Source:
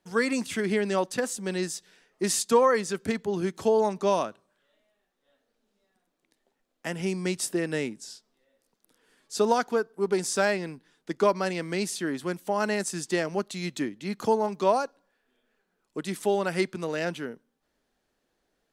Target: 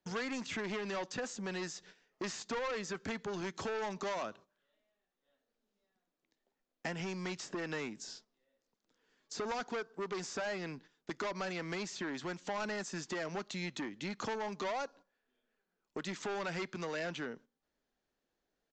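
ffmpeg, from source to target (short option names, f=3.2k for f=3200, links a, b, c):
-filter_complex "[0:a]asplit=2[a][b];[b]acompressor=threshold=-35dB:ratio=6,volume=-2dB[c];[a][c]amix=inputs=2:normalize=0,agate=range=-13dB:threshold=-48dB:ratio=16:detection=peak,asoftclip=type=tanh:threshold=-24.5dB,aresample=16000,aresample=44100,acrossover=split=830|2300[d][e][f];[d]acompressor=threshold=-39dB:ratio=4[g];[e]acompressor=threshold=-39dB:ratio=4[h];[f]acompressor=threshold=-45dB:ratio=4[i];[g][h][i]amix=inputs=3:normalize=0,volume=-1.5dB"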